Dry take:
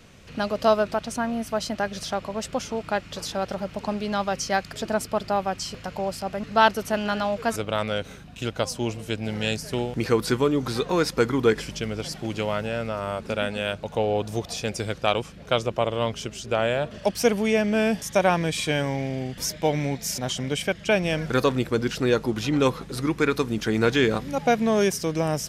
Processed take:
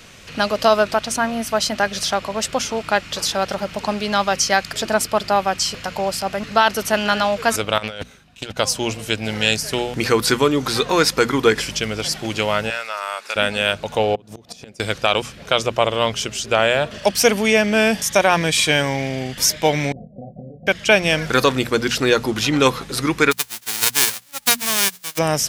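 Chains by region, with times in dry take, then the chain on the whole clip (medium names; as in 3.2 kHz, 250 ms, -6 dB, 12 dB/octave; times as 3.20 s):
7.78–8.57 s: gate -32 dBFS, range -20 dB + compressor with a negative ratio -33 dBFS, ratio -0.5 + loudspeaker Doppler distortion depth 0.18 ms
12.70–13.36 s: high-pass 980 Hz + band-stop 3.1 kHz, Q 11
14.15–14.80 s: inverted gate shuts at -21 dBFS, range -25 dB + peaking EQ 240 Hz +10.5 dB 2.8 oct + compression 4:1, threshold -36 dBFS
19.92–20.67 s: compressor with a negative ratio -34 dBFS + rippled Chebyshev low-pass 760 Hz, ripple 9 dB + doubling 25 ms -5 dB
23.31–25.17 s: formants flattened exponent 0.1 + upward expansion 2.5:1, over -33 dBFS
whole clip: tilt shelf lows -4.5 dB, about 860 Hz; hum notches 60/120/180/240 Hz; loudness maximiser +8.5 dB; trim -1 dB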